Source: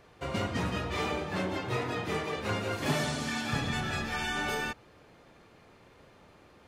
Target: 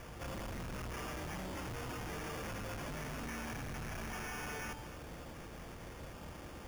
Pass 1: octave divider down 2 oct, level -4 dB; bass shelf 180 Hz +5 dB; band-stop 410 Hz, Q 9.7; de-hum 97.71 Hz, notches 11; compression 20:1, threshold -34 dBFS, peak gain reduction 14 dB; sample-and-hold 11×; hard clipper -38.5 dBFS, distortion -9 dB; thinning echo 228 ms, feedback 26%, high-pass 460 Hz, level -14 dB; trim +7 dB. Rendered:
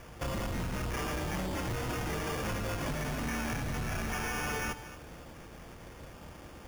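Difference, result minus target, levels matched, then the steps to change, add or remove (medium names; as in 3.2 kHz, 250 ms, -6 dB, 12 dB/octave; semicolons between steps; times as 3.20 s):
hard clipper: distortion -6 dB
change: hard clipper -48.5 dBFS, distortion -4 dB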